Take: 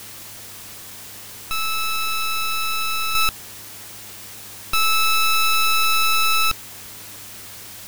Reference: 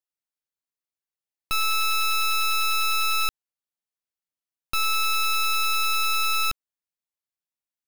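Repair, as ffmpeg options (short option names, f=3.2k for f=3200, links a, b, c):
-filter_complex "[0:a]bandreject=f=103.3:t=h:w=4,bandreject=f=206.6:t=h:w=4,bandreject=f=309.9:t=h:w=4,bandreject=f=413.2:t=h:w=4,asplit=3[a][b][c];[a]afade=t=out:st=6.82:d=0.02[d];[b]highpass=f=140:w=0.5412,highpass=f=140:w=1.3066,afade=t=in:st=6.82:d=0.02,afade=t=out:st=6.94:d=0.02[e];[c]afade=t=in:st=6.94:d=0.02[f];[d][e][f]amix=inputs=3:normalize=0,afwtdn=0.013,asetnsamples=n=441:p=0,asendcmd='3.15 volume volume -5.5dB',volume=0dB"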